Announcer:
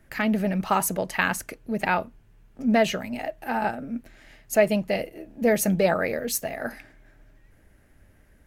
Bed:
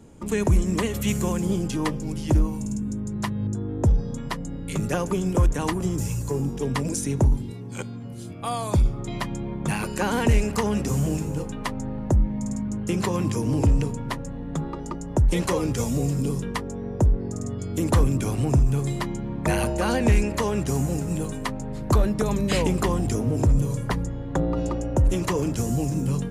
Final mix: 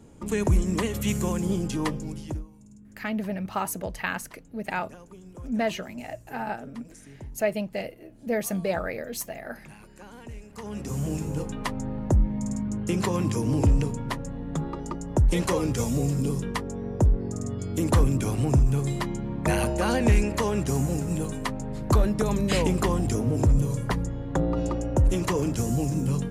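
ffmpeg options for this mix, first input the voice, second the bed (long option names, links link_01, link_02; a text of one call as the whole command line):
ffmpeg -i stem1.wav -i stem2.wav -filter_complex "[0:a]adelay=2850,volume=-6dB[link_01];[1:a]volume=19dB,afade=type=out:start_time=1.93:duration=0.52:silence=0.1,afade=type=in:start_time=10.5:duration=0.91:silence=0.0891251[link_02];[link_01][link_02]amix=inputs=2:normalize=0" out.wav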